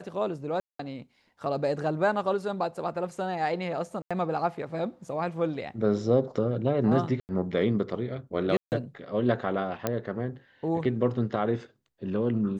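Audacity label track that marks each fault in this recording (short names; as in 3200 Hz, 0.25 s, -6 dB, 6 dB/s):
0.600000	0.790000	gap 0.194 s
4.020000	4.110000	gap 86 ms
7.200000	7.290000	gap 89 ms
8.570000	8.720000	gap 0.149 s
9.870000	9.870000	pop -12 dBFS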